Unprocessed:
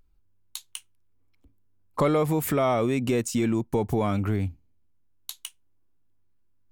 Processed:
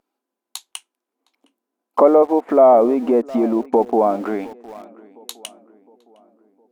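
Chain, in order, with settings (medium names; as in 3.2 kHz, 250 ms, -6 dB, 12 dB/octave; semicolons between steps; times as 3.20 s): brick-wall FIR high-pass 210 Hz; on a send: filtered feedback delay 711 ms, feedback 48%, low-pass 1.5 kHz, level -19.5 dB; on the sum: Chebyshev shaper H 7 -35 dB, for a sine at -12 dBFS; peaking EQ 720 Hz +10.5 dB 1.2 oct; low-pass that closes with the level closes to 890 Hz, closed at -20.5 dBFS; in parallel at -9 dB: small samples zeroed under -35.5 dBFS; on the sum: trim +3.5 dB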